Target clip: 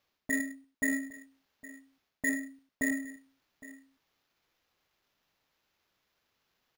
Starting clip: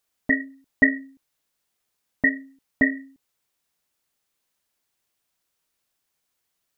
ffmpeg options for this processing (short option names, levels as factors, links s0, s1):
-af "areverse,acompressor=threshold=0.0398:ratio=8,areverse,acrusher=samples=5:mix=1:aa=0.000001,aeval=exprs='0.112*(cos(1*acos(clip(val(0)/0.112,-1,1)))-cos(1*PI/2))+0.00282*(cos(7*acos(clip(val(0)/0.112,-1,1)))-cos(7*PI/2))':c=same,aecho=1:1:103|811:0.224|0.119"